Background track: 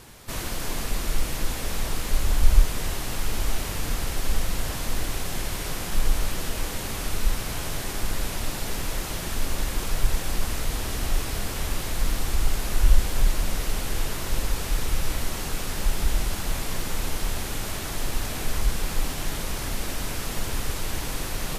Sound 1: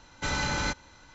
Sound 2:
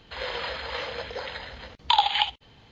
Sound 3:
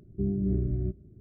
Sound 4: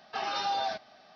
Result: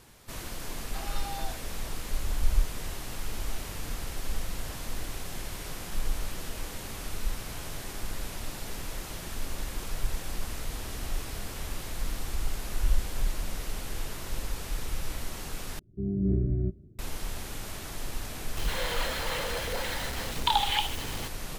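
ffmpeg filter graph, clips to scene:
-filter_complex "[0:a]volume=-8dB[a];[3:a]dynaudnorm=f=120:g=5:m=9dB[b];[2:a]aeval=exprs='val(0)+0.5*0.0473*sgn(val(0))':c=same[c];[a]asplit=2[d][e];[d]atrim=end=15.794[f];[b]atrim=end=1.2,asetpts=PTS-STARTPTS,volume=-7.5dB[g];[e]atrim=start=16.986[h];[4:a]atrim=end=1.15,asetpts=PTS-STARTPTS,volume=-9.5dB,afade=t=in:d=0.004:c=hsin,afade=t=out:st=1.146:d=0.004:c=hsin,adelay=800[i];[c]atrim=end=2.71,asetpts=PTS-STARTPTS,volume=-6dB,afade=t=in:d=0.004:c=hsin,afade=t=out:st=2.706:d=0.004:c=hsin,adelay=18570[j];[f][g]acrossfade=d=0.004:c1=hsin:c2=hsin[k];[k][h]acrossfade=d=0.004:c1=hsin:c2=hsin[l];[l][i][j]amix=inputs=3:normalize=0"

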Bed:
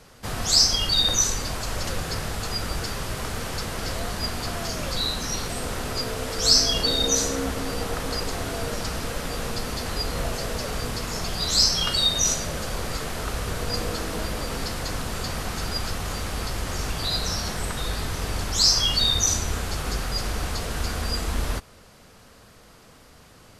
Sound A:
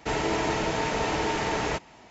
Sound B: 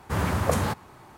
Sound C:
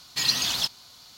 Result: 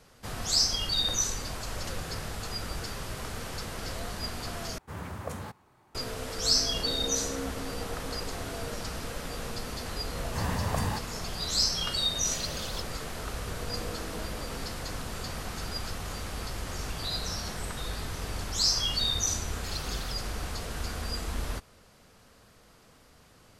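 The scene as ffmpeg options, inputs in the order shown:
-filter_complex "[2:a]asplit=2[a][b];[3:a]asplit=2[c][d];[0:a]volume=-7dB[e];[b]aecho=1:1:1.1:0.6[f];[e]asplit=2[g][h];[g]atrim=end=4.784[i];[a]atrim=end=1.17,asetpts=PTS-STARTPTS,volume=-13.5dB[j];[h]atrim=start=5.946[k];[f]atrim=end=1.17,asetpts=PTS-STARTPTS,volume=-8dB,afade=t=in:d=0.004:c=hsin,afade=t=out:st=1.166:d=0.004:c=hsin,adelay=10250[l];[c]atrim=end=1.17,asetpts=PTS-STARTPTS,volume=-13.5dB,afade=t=in:d=0.004:c=hsin,afade=t=out:st=1.166:d=0.004:c=hsin,adelay=12150[m];[d]atrim=end=1.17,asetpts=PTS-STARTPTS,volume=-16.5dB,afade=t=in:d=0.004:c=hsin,afade=t=out:st=1.166:d=0.004:c=hsin,adelay=19470[n];[i][j]acrossfade=d=0.004:c1=hsin:c2=hsin[o];[o][k]acrossfade=d=0.004:c1=hsin:c2=hsin[p];[p][l][m][n]amix=inputs=4:normalize=0"

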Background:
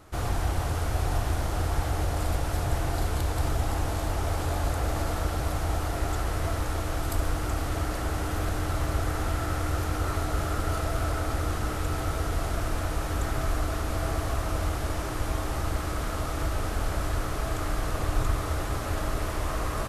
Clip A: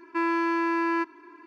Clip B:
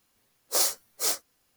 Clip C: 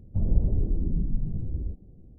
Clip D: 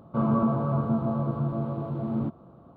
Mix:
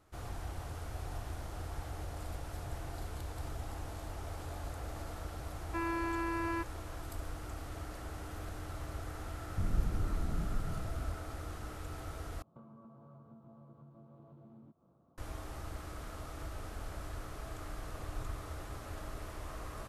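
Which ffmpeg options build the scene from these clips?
-filter_complex "[0:a]volume=-14.5dB[a];[4:a]acompressor=threshold=-36dB:ratio=8:attack=14:release=336:knee=1:detection=peak[b];[a]asplit=2[c][d];[c]atrim=end=12.424[e];[b]atrim=end=2.76,asetpts=PTS-STARTPTS,volume=-17.5dB[f];[d]atrim=start=15.176[g];[1:a]atrim=end=1.46,asetpts=PTS-STARTPTS,volume=-10.5dB,afade=t=in:d=0.004:c=hsin,afade=t=out:st=1.456:d=0.004:c=hsin,adelay=5590[h];[3:a]atrim=end=2.18,asetpts=PTS-STARTPTS,volume=-9.5dB,afade=t=in:d=0.004:c=hsin,afade=t=out:st=2.176:d=0.004:c=hsin,adelay=9420[i];[e][f]acrossfade=d=0.004:c1=hsin:c2=hsin[j];[j][g]acrossfade=d=0.004:c1=hsin:c2=hsin[k];[k][h][i]amix=inputs=3:normalize=0"

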